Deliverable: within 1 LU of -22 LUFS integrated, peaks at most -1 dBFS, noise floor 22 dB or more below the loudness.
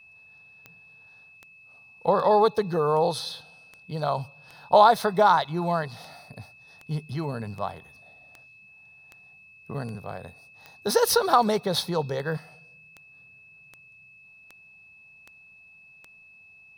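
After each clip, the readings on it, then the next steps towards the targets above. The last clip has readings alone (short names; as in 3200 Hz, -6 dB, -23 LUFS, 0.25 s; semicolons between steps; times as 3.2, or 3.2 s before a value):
clicks 21; steady tone 2600 Hz; tone level -50 dBFS; loudness -24.0 LUFS; peak -4.5 dBFS; loudness target -22.0 LUFS
-> de-click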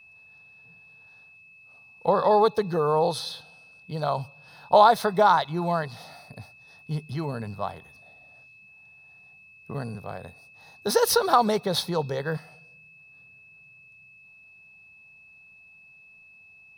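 clicks 0; steady tone 2600 Hz; tone level -50 dBFS
-> notch 2600 Hz, Q 30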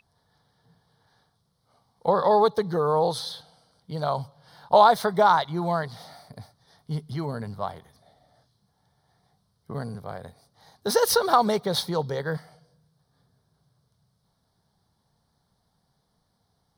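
steady tone none; loudness -24.0 LUFS; peak -4.5 dBFS; loudness target -22.0 LUFS
-> gain +2 dB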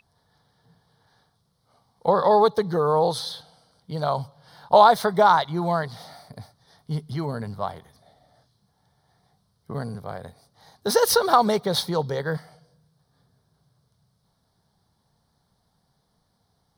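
loudness -22.0 LUFS; peak -2.5 dBFS; noise floor -70 dBFS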